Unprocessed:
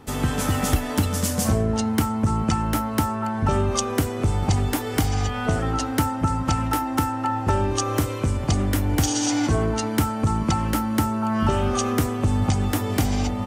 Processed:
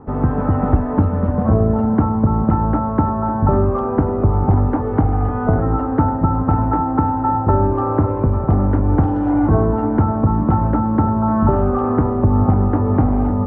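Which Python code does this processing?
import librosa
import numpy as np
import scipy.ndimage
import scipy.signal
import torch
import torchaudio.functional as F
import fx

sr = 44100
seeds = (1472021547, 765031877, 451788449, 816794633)

y = scipy.signal.sosfilt(scipy.signal.butter(4, 1200.0, 'lowpass', fs=sr, output='sos'), x)
y = fx.echo_feedback(y, sr, ms=551, feedback_pct=59, wet_db=-11)
y = F.gain(torch.from_numpy(y), 6.5).numpy()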